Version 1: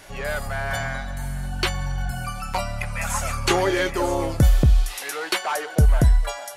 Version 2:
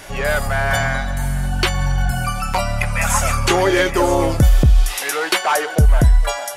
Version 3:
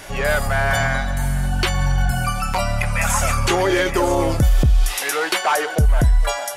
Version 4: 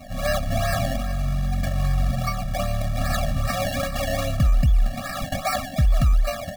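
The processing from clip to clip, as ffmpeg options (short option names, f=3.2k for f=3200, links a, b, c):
-af "alimiter=limit=-13.5dB:level=0:latency=1:release=168,bandreject=f=4.2k:w=17,volume=8.5dB"
-af "alimiter=limit=-8.5dB:level=0:latency=1:release=44"
-af "acrusher=samples=25:mix=1:aa=0.000001:lfo=1:lforange=25:lforate=2.5,afftfilt=real='re*eq(mod(floor(b*sr/1024/270),2),0)':imag='im*eq(mod(floor(b*sr/1024/270),2),0)':win_size=1024:overlap=0.75,volume=-3dB"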